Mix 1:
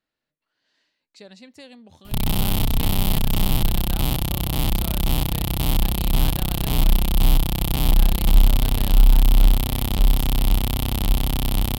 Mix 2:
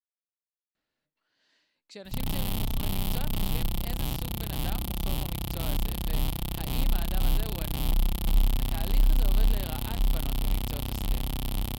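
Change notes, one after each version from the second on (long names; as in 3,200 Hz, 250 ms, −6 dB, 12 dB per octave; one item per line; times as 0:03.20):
speech: entry +0.75 s
background −9.0 dB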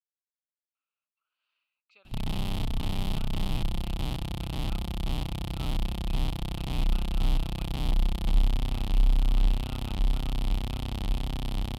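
speech: add pair of resonant band-passes 1,800 Hz, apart 1 octave
master: add high-frequency loss of the air 64 metres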